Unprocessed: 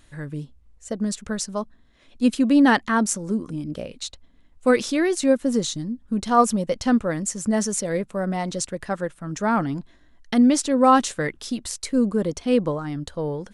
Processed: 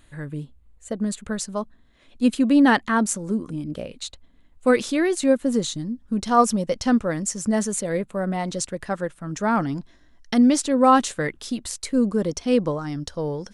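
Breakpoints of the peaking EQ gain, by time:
peaking EQ 5.5 kHz 0.33 oct
-11.5 dB
from 1.32 s -5 dB
from 5.85 s +3.5 dB
from 7.59 s -8 dB
from 8.43 s -0.5 dB
from 9.55 s +8 dB
from 10.56 s -2 dB
from 12.03 s +7.5 dB
from 12.81 s +14 dB

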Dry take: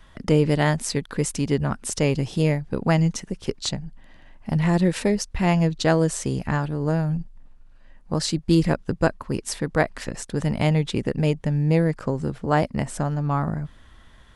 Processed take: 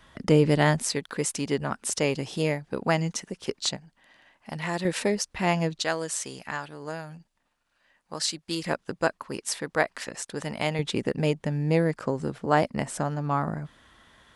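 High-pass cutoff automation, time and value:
high-pass 6 dB/octave
120 Hz
from 0.88 s 420 Hz
from 3.77 s 920 Hz
from 4.85 s 390 Hz
from 5.80 s 1.5 kHz
from 8.66 s 670 Hz
from 10.79 s 260 Hz

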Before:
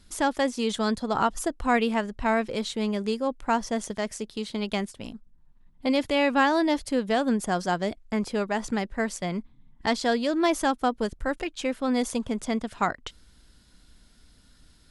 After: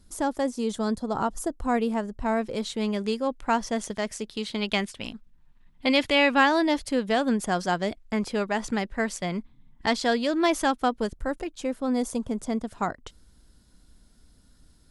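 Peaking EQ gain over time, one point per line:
peaking EQ 2.6 kHz 2.1 oct
2.21 s -10 dB
2.89 s +1.5 dB
4.13 s +1.5 dB
4.98 s +9 dB
5.97 s +9 dB
6.64 s +2 dB
10.89 s +2 dB
11.42 s -8.5 dB

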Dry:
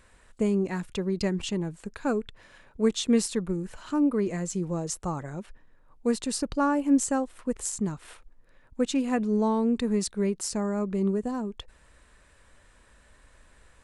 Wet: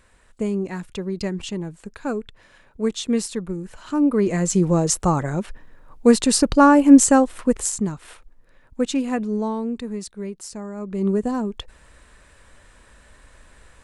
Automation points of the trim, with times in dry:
3.70 s +1 dB
4.58 s +12 dB
7.39 s +12 dB
7.92 s +4 dB
8.95 s +4 dB
10.03 s -4.5 dB
10.75 s -4.5 dB
11.15 s +7 dB

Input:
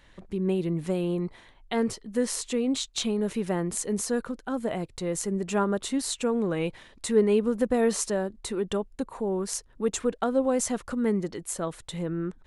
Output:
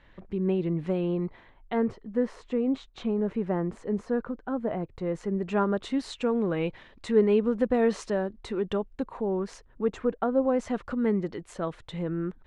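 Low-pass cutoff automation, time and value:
1.14 s 2.7 kHz
1.99 s 1.5 kHz
4.81 s 1.5 kHz
5.82 s 3.2 kHz
9.16 s 3.2 kHz
10.36 s 1.5 kHz
10.81 s 3.1 kHz

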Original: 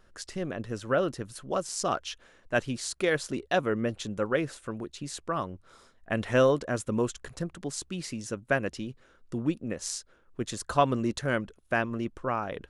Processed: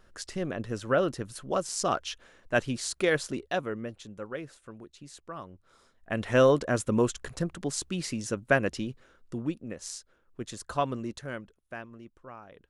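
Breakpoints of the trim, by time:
3.19 s +1 dB
4.01 s -10 dB
5.41 s -10 dB
6.57 s +3 dB
8.81 s +3 dB
9.65 s -5 dB
10.85 s -5 dB
12.04 s -16 dB

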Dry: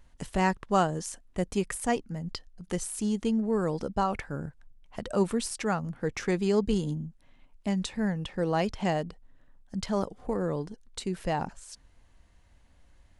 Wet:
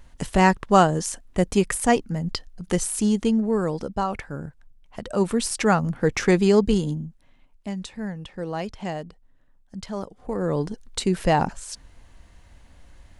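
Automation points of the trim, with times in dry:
2.98 s +8.5 dB
3.92 s +2 dB
5.09 s +2 dB
5.63 s +9.5 dB
6.36 s +9.5 dB
7.75 s -2.5 dB
10.15 s -2.5 dB
10.66 s +10 dB

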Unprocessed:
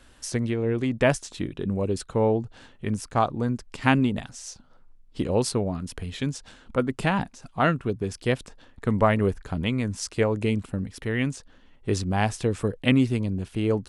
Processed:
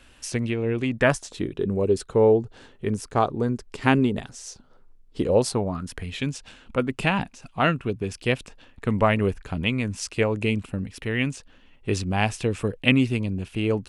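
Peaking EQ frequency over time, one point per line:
peaking EQ +8.5 dB 0.47 oct
0.91 s 2.6 kHz
1.37 s 410 Hz
5.21 s 410 Hz
6.14 s 2.6 kHz

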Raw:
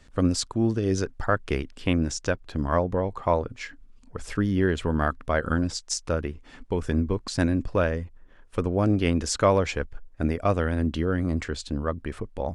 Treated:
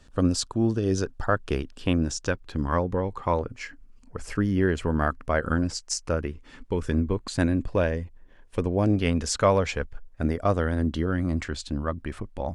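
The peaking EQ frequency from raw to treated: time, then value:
peaking EQ -10 dB 0.22 oct
2.1 kHz
from 2.28 s 650 Hz
from 3.39 s 3.6 kHz
from 6.26 s 720 Hz
from 6.94 s 5.4 kHz
from 7.70 s 1.3 kHz
from 8.96 s 330 Hz
from 10.25 s 2.5 kHz
from 11.06 s 450 Hz

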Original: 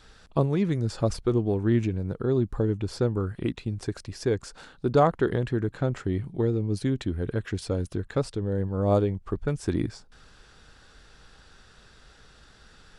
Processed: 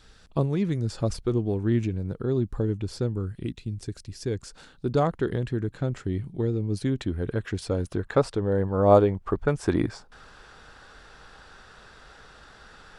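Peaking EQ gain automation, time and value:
peaking EQ 940 Hz 2.6 oct
2.76 s -3.5 dB
3.48 s -13 dB
4.09 s -13 dB
4.54 s -5 dB
6.37 s -5 dB
7.03 s +1.5 dB
7.66 s +1.5 dB
8.14 s +9 dB

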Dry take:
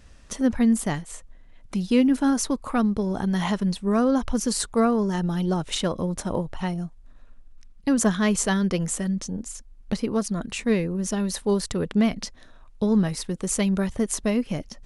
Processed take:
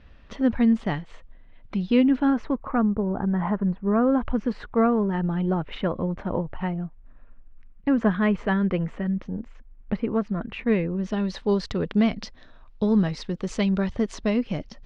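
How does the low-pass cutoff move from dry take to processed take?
low-pass 24 dB/octave
2.06 s 3.6 kHz
2.91 s 1.6 kHz
3.77 s 1.6 kHz
4.27 s 2.5 kHz
10.44 s 2.5 kHz
11.54 s 4.7 kHz

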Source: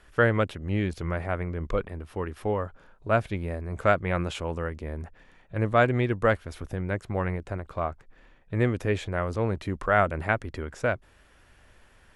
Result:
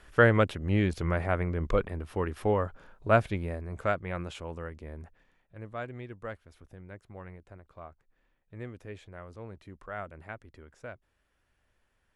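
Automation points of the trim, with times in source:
3.14 s +1 dB
4.02 s -8 dB
5.03 s -8 dB
5.58 s -17 dB

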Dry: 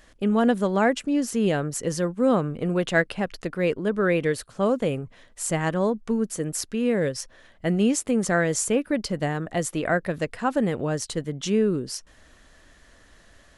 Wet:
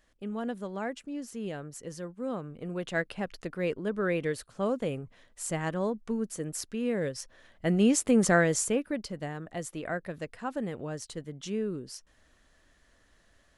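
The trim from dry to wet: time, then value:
2.41 s -14 dB
3.23 s -7 dB
7.15 s -7 dB
8.24 s +1 dB
9.14 s -10.5 dB

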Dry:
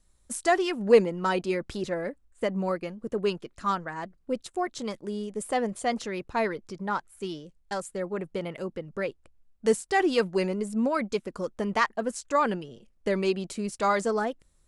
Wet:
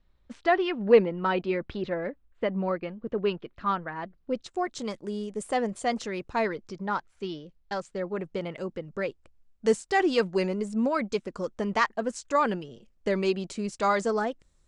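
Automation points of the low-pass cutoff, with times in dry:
low-pass 24 dB/octave
3.95 s 3.7 kHz
4.73 s 8.8 kHz
6.26 s 8.8 kHz
7.41 s 4.8 kHz
8.65 s 7.9 kHz

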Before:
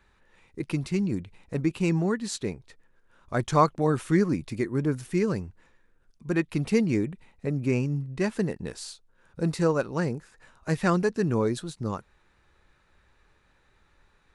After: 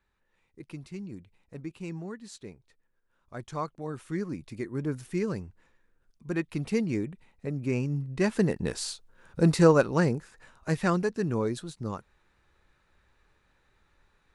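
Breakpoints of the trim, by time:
3.80 s -13 dB
4.94 s -4.5 dB
7.61 s -4.5 dB
8.71 s +5 dB
9.74 s +5 dB
11.09 s -3.5 dB

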